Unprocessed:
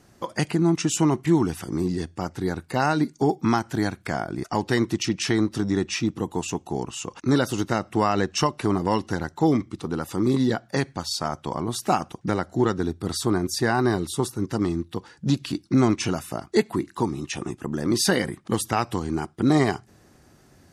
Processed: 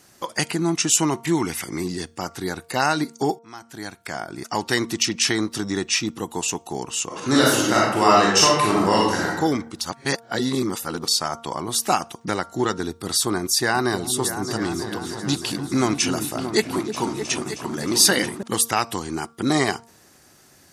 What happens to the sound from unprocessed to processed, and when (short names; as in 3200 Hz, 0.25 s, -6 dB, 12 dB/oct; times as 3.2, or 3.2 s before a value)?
1.37–1.84 bell 2100 Hz +14 dB 0.24 oct
3.39–4.65 fade in
7.06–9.3 reverb throw, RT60 0.87 s, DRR -4.5 dB
9.81–11.08 reverse
13.43–18.43 repeats that get brighter 0.312 s, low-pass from 400 Hz, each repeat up 2 oct, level -6 dB
whole clip: tilt +2.5 dB/oct; de-hum 230.7 Hz, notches 6; gain +2.5 dB